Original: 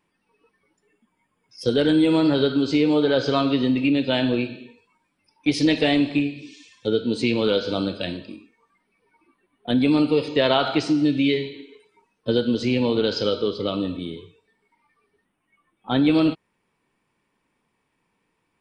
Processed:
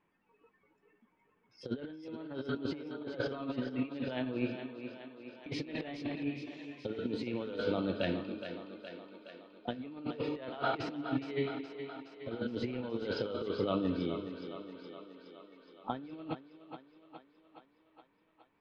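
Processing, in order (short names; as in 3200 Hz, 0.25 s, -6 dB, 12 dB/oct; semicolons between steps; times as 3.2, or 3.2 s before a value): LPF 2200 Hz 12 dB/oct; low shelf 290 Hz -3 dB; negative-ratio compressor -27 dBFS, ratio -0.5; on a send: thinning echo 0.418 s, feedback 66%, high-pass 200 Hz, level -9 dB; on the sum: gain -8.5 dB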